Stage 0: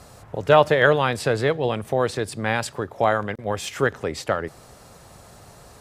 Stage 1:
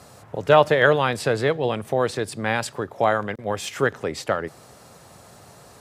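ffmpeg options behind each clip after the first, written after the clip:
-af "highpass=98"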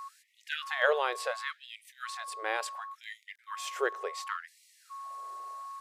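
-af "aeval=exprs='val(0)+0.0282*sin(2*PI*1100*n/s)':c=same,afftfilt=real='re*gte(b*sr/1024,330*pow(1900/330,0.5+0.5*sin(2*PI*0.7*pts/sr)))':imag='im*gte(b*sr/1024,330*pow(1900/330,0.5+0.5*sin(2*PI*0.7*pts/sr)))':win_size=1024:overlap=0.75,volume=-8.5dB"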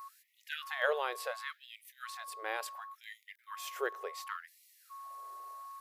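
-af "aexciter=amount=4.5:drive=4.8:freq=11k,volume=-5dB"

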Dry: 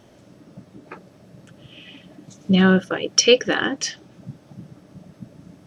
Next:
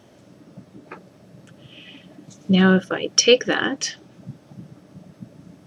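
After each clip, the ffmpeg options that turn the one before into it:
-af "highpass=77"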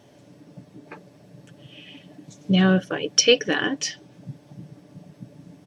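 -af "equalizer=f=1.3k:t=o:w=0.21:g=-8.5,aecho=1:1:6.9:0.39,volume=-2dB"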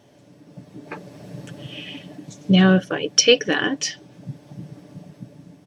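-af "dynaudnorm=f=440:g=5:m=16dB,volume=-1dB"

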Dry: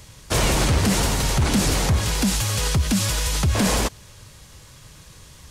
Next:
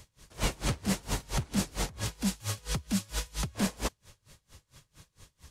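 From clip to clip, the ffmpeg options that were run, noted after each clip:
-af "aeval=exprs='val(0)*pow(10,-28*(0.5-0.5*cos(2*PI*4.4*n/s))/20)':c=same,volume=-6.5dB"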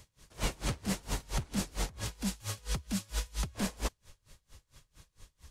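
-af "asubboost=boost=3:cutoff=62,volume=-3.5dB"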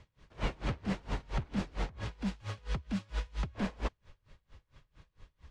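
-af "lowpass=2.7k"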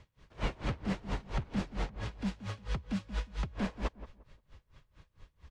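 -filter_complex "[0:a]asplit=2[a][b];[b]adelay=176,lowpass=f=1.2k:p=1,volume=-13dB,asplit=2[c][d];[d]adelay=176,lowpass=f=1.2k:p=1,volume=0.27,asplit=2[e][f];[f]adelay=176,lowpass=f=1.2k:p=1,volume=0.27[g];[a][c][e][g]amix=inputs=4:normalize=0"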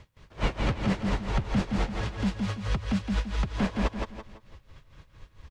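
-af "aecho=1:1:167|334|501|668:0.631|0.208|0.0687|0.0227,volume=6.5dB"

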